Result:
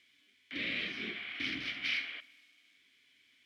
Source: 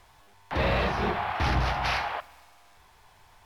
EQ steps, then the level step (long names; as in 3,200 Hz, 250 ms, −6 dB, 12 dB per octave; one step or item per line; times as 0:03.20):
formant filter i
spectral tilt +4 dB per octave
low-shelf EQ 240 Hz +6 dB
+3.5 dB